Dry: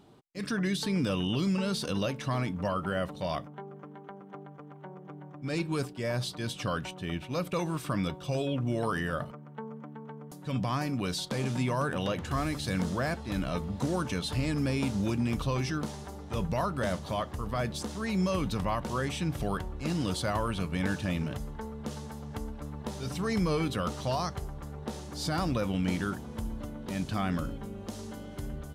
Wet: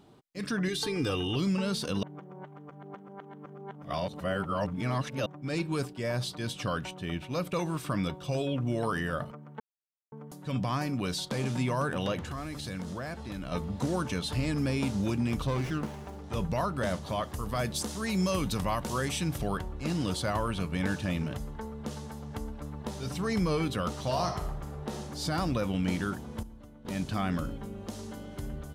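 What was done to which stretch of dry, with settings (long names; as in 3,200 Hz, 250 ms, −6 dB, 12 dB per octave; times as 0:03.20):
0:00.68–0:01.36: comb filter 2.5 ms, depth 68%
0:02.03–0:05.26: reverse
0:09.60–0:10.12: silence
0:12.24–0:13.52: downward compressor 3 to 1, threshold −35 dBFS
0:15.47–0:16.24: windowed peak hold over 9 samples
0:17.23–0:19.38: high-shelf EQ 5,200 Hz +10 dB
0:24.01–0:25.00: thrown reverb, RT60 0.81 s, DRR 3.5 dB
0:26.43–0:26.85: clip gain −11.5 dB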